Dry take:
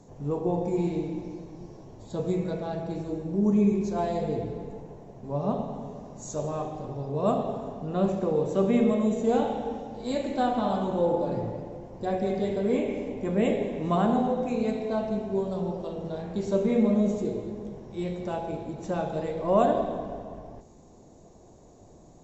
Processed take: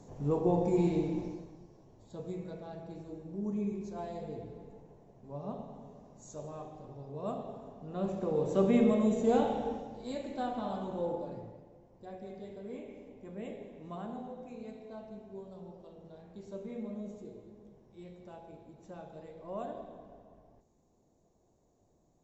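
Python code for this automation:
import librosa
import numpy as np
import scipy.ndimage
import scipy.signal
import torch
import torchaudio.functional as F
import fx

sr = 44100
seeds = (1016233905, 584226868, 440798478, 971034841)

y = fx.gain(x, sr, db=fx.line((1.24, -1.0), (1.67, -12.5), (7.77, -12.5), (8.57, -3.0), (9.68, -3.0), (10.16, -10.0), (11.1, -10.0), (11.65, -18.0)))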